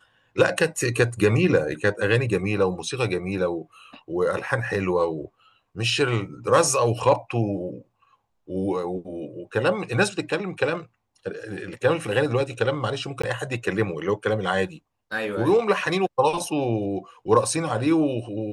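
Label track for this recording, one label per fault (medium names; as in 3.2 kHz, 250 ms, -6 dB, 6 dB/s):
13.220000	13.230000	dropout 15 ms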